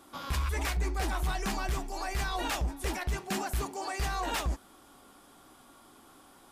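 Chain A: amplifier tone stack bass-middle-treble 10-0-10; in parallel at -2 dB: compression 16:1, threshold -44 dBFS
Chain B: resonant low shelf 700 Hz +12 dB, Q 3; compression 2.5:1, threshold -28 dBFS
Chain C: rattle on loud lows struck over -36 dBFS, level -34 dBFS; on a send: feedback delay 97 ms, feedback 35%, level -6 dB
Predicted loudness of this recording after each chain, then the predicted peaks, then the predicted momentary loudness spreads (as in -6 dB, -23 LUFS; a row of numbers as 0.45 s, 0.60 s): -37.0 LUFS, -30.0 LUFS, -32.5 LUFS; -21.5 dBFS, -15.5 dBFS, -19.5 dBFS; 20 LU, 18 LU, 4 LU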